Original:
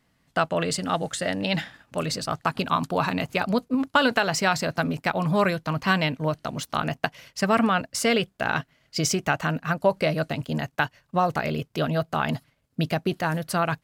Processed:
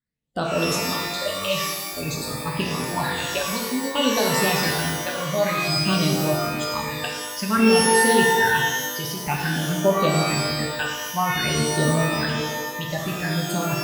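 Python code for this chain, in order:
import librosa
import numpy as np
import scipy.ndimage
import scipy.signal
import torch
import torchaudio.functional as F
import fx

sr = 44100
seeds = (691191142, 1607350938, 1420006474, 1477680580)

y = fx.noise_reduce_blind(x, sr, reduce_db=23)
y = fx.phaser_stages(y, sr, stages=8, low_hz=260.0, high_hz=2100.0, hz=0.53, feedback_pct=45)
y = fx.rev_shimmer(y, sr, seeds[0], rt60_s=1.1, semitones=12, shimmer_db=-2, drr_db=-0.5)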